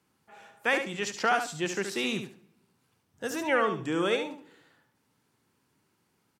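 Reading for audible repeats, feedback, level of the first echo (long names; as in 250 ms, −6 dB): 2, 18%, −7.5 dB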